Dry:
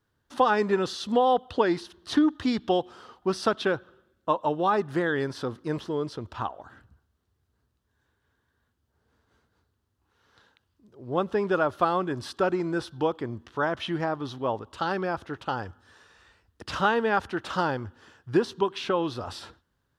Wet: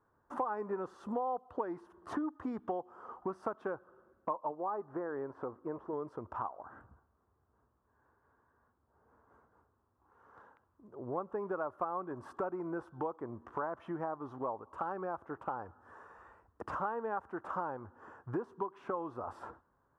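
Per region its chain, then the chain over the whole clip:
0:04.51–0:05.93: one scale factor per block 7 bits + low-pass filter 1,000 Hz 6 dB per octave + parametric band 170 Hz −6.5 dB 1.3 octaves
whole clip: drawn EQ curve 120 Hz 0 dB, 1,100 Hz +13 dB, 4,000 Hz −24 dB, 7,200 Hz −11 dB; downward compressor 3 to 1, threshold −36 dBFS; level −4 dB

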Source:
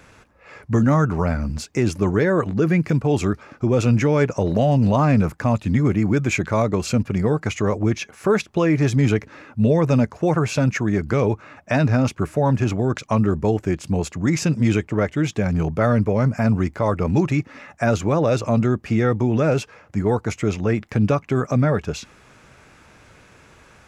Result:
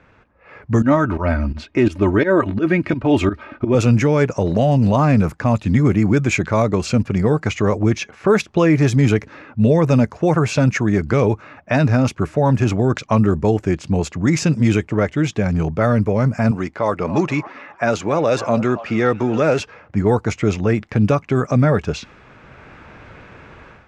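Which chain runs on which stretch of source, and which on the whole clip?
0:00.82–0:03.75: high shelf with overshoot 4,400 Hz −8 dB, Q 1.5 + comb filter 3.2 ms, depth 61% + fake sidechain pumping 85 BPM, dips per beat 2, −16 dB, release 125 ms
0:16.51–0:19.60: high-pass filter 340 Hz 6 dB per octave + echo through a band-pass that steps 276 ms, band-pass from 830 Hz, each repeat 0.7 octaves, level −11.5 dB
whole clip: low-pass that shuts in the quiet parts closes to 2,500 Hz, open at −13.5 dBFS; automatic gain control; level −2.5 dB

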